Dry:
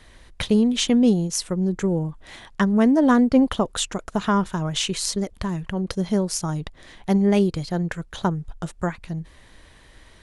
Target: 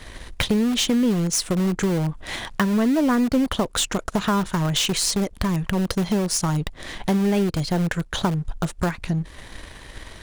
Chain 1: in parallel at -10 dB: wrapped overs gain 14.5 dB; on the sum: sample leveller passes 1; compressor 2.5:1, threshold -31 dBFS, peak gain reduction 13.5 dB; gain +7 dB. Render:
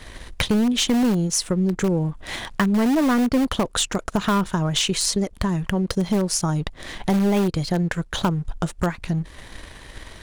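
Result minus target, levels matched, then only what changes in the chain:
wrapped overs: distortion -15 dB
change: wrapped overs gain 21 dB

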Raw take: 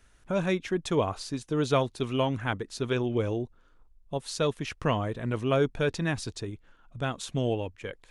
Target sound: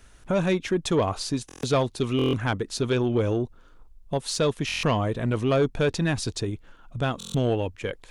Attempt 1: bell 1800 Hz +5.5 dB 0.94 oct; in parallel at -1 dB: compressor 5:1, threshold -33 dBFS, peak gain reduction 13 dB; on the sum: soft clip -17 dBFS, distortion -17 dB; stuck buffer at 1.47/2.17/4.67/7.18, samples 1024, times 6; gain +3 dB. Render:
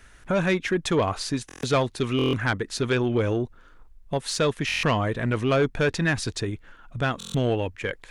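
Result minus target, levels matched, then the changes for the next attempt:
2000 Hz band +4.5 dB
change: bell 1800 Hz -2.5 dB 0.94 oct

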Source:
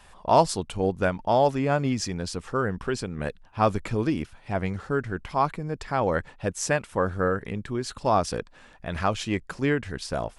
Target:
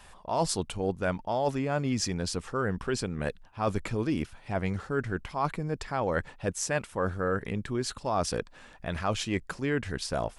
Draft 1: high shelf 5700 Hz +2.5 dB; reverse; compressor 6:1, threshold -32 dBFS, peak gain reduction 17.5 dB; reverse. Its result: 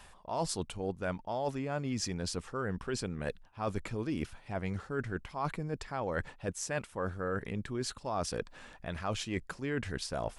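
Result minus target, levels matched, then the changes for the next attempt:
compressor: peak gain reduction +6 dB
change: compressor 6:1, threshold -24.5 dBFS, peak gain reduction 11.5 dB

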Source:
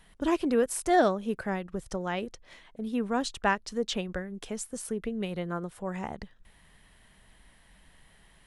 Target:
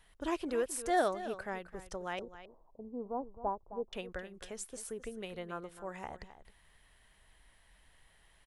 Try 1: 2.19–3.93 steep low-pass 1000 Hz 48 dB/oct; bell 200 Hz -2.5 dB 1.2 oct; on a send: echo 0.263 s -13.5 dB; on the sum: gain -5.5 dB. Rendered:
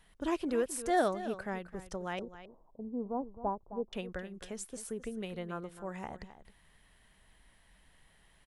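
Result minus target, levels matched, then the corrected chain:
250 Hz band +3.0 dB
2.19–3.93 steep low-pass 1000 Hz 48 dB/oct; bell 200 Hz -9.5 dB 1.2 oct; on a send: echo 0.263 s -13.5 dB; on the sum: gain -5.5 dB

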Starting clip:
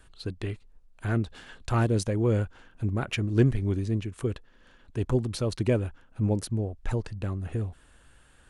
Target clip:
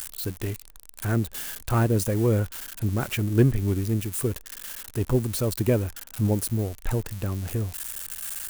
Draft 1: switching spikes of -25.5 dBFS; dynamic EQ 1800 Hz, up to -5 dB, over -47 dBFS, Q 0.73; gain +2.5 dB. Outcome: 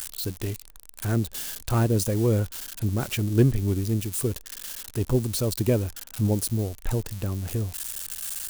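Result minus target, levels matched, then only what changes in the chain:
2000 Hz band -2.5 dB
change: dynamic EQ 4400 Hz, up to -5 dB, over -47 dBFS, Q 0.73

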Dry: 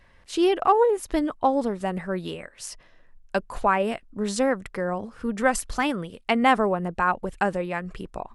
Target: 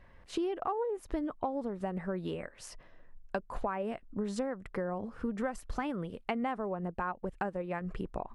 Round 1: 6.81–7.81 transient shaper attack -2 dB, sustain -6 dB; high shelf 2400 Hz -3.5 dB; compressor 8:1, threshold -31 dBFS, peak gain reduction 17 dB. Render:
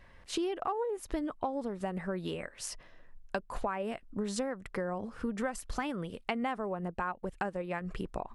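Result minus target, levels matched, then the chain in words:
4000 Hz band +5.5 dB
6.81–7.81 transient shaper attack -2 dB, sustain -6 dB; high shelf 2400 Hz -13 dB; compressor 8:1, threshold -31 dBFS, peak gain reduction 16 dB

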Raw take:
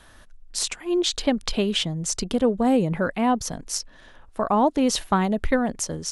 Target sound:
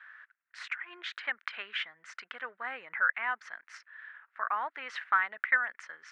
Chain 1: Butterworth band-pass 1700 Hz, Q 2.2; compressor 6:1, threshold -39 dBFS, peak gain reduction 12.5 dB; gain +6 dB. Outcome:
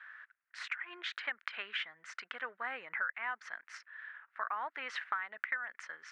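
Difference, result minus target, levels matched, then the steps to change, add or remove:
compressor: peak gain reduction +12.5 dB
remove: compressor 6:1, threshold -39 dBFS, peak gain reduction 12.5 dB

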